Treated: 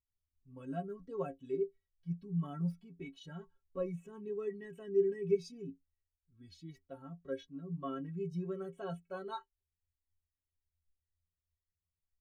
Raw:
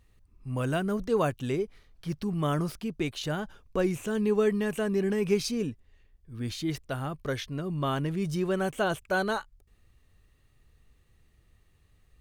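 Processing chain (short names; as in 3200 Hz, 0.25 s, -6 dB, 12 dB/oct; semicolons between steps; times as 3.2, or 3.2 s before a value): metallic resonator 81 Hz, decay 0.3 s, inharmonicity 0.03; spectral expander 1.5:1; gain +1 dB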